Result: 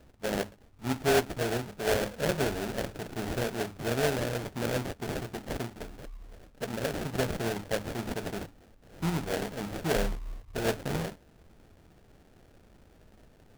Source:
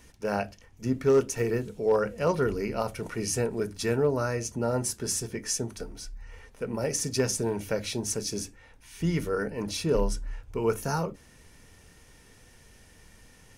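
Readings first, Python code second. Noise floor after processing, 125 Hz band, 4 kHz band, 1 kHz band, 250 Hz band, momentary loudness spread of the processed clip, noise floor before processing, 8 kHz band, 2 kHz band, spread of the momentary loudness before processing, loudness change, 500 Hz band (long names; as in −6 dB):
−59 dBFS, −2.5 dB, −0.5 dB, −1.0 dB, −3.0 dB, 11 LU, −56 dBFS, −9.0 dB, +2.5 dB, 11 LU, −3.0 dB, −4.0 dB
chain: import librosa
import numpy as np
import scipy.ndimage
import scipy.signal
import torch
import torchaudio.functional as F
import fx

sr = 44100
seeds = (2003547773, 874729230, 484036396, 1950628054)

y = fx.cvsd(x, sr, bps=64000)
y = fx.sample_hold(y, sr, seeds[0], rate_hz=1100.0, jitter_pct=20)
y = F.gain(torch.from_numpy(y), -3.0).numpy()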